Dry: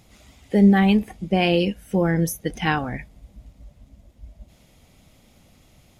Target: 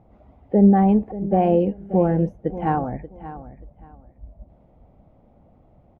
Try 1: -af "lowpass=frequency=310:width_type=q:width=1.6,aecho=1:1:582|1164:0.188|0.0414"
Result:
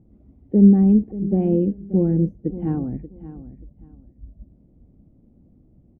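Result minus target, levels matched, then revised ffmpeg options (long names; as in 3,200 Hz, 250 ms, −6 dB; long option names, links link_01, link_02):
1,000 Hz band −19.0 dB
-af "lowpass=frequency=760:width_type=q:width=1.6,aecho=1:1:582|1164:0.188|0.0414"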